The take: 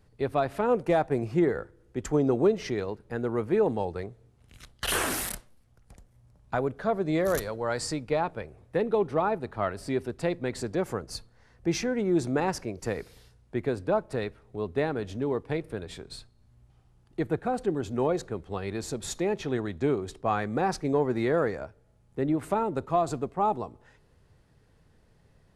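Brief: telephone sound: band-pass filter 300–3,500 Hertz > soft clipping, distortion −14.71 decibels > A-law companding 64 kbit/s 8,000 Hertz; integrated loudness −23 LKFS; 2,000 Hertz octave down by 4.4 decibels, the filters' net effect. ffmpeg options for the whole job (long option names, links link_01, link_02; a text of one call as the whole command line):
ffmpeg -i in.wav -af "highpass=300,lowpass=3500,equalizer=frequency=2000:width_type=o:gain=-5.5,asoftclip=threshold=-22.5dB,volume=10.5dB" -ar 8000 -c:a pcm_alaw out.wav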